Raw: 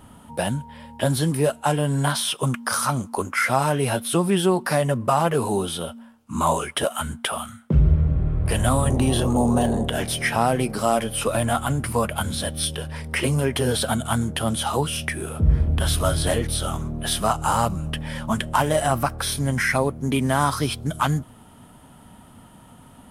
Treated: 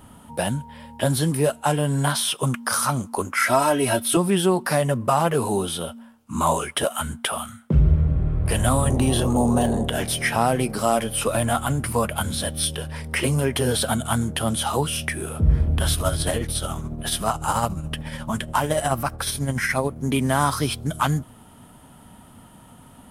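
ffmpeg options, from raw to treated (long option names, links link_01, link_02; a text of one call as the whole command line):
ffmpeg -i in.wav -filter_complex "[0:a]asettb=1/sr,asplit=3[link_01][link_02][link_03];[link_01]atrim=end=3.394[link_04];[link_02]atrim=start=3.39:end=4.17,asetpts=PTS-STARTPTS,afade=type=in:duration=0.004:curve=qsin,afade=type=out:start_time=0.776:duration=0.004:curve=qsin,aecho=1:1:3.1:0.82,atrim=end_sample=34398[link_05];[link_03]atrim=start=4.166[link_06];[link_04][link_05]acrossfade=duration=0.004:curve1=hsin:curve2=qsin[link_07];[link_07][link_06]acrossfade=duration=0.004:curve1=qsin:curve2=hsin,asettb=1/sr,asplit=3[link_08][link_09][link_10];[link_08]atrim=end=15.934[link_11];[link_09]atrim=start=15.93:end=19.96,asetpts=PTS-STARTPTS,afade=type=in:duration=0.004:curve=qsin,afade=type=out:start_time=4.026:duration=0.004:curve=qsin,tremolo=f=14:d=0.46[link_12];[link_10]atrim=start=19.956[link_13];[link_11][link_12]acrossfade=duration=0.004:curve1=hsin:curve2=qsin[link_14];[link_14][link_13]acrossfade=duration=0.004:curve1=qsin:curve2=hsin,highshelf=frequency=9500:gain=4" out.wav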